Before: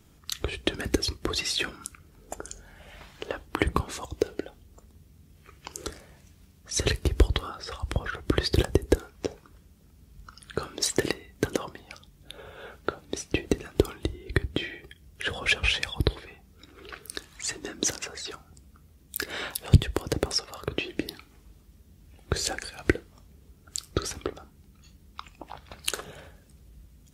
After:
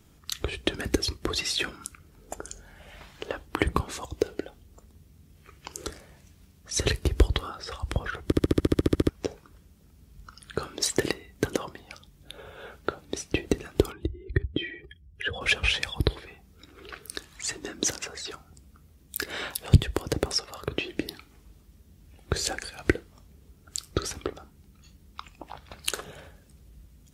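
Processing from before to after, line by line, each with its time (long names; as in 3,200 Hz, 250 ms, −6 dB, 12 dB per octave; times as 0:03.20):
0:08.25: stutter in place 0.07 s, 12 plays
0:13.92–0:15.41: expanding power law on the bin magnitudes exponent 1.6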